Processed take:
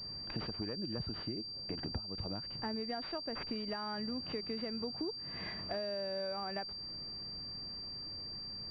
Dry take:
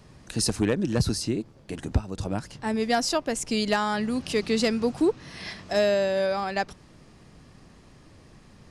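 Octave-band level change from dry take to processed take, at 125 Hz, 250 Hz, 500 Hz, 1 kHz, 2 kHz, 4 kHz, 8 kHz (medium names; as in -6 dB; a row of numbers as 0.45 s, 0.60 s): -14.5 dB, -14.5 dB, -15.5 dB, -14.5 dB, -16.0 dB, -4.0 dB, under -40 dB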